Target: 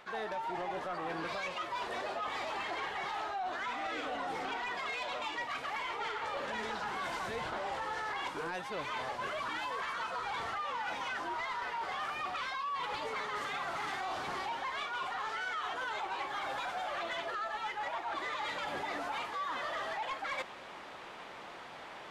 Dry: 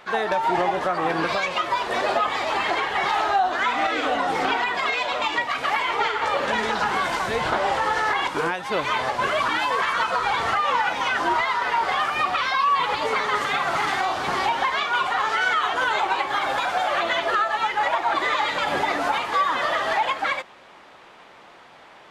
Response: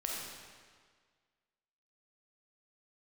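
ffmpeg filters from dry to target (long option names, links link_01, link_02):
-af "areverse,acompressor=threshold=-33dB:ratio=12,areverse,asoftclip=type=tanh:threshold=-30dB"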